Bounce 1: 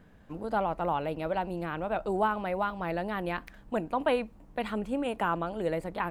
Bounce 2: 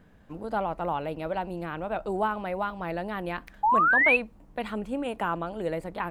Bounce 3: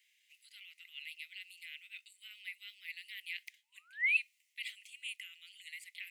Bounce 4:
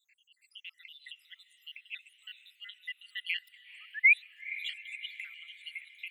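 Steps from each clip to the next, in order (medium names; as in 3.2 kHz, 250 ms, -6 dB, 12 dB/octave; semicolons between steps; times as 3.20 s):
painted sound rise, 3.63–4.17 s, 810–2700 Hz -21 dBFS
reverse; compression 6:1, threshold -29 dBFS, peak gain reduction 11.5 dB; reverse; rippled Chebyshev high-pass 2 kHz, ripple 3 dB; trim +4.5 dB
random holes in the spectrogram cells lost 78%; high-order bell 2.1 kHz +9.5 dB; echo that smears into a reverb 473 ms, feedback 56%, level -16 dB; trim +1.5 dB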